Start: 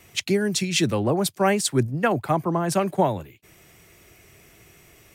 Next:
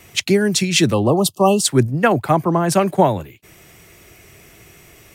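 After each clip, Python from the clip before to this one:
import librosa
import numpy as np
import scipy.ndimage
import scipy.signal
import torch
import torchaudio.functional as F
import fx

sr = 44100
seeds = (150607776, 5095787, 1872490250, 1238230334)

y = fx.spec_erase(x, sr, start_s=0.94, length_s=0.69, low_hz=1300.0, high_hz=2600.0)
y = y * 10.0 ** (6.5 / 20.0)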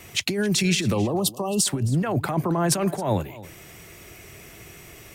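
y = fx.over_compress(x, sr, threshold_db=-20.0, ratio=-1.0)
y = y + 10.0 ** (-18.5 / 20.0) * np.pad(y, (int(268 * sr / 1000.0), 0))[:len(y)]
y = y * 10.0 ** (-3.0 / 20.0)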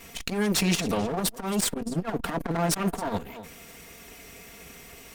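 y = fx.lower_of_two(x, sr, delay_ms=4.3)
y = fx.transformer_sat(y, sr, knee_hz=410.0)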